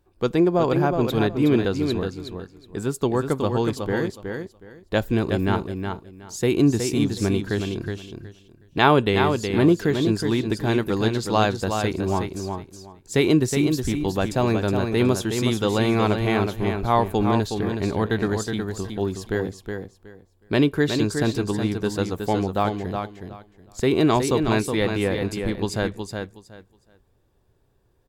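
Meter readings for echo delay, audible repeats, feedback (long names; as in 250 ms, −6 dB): 368 ms, 3, 20%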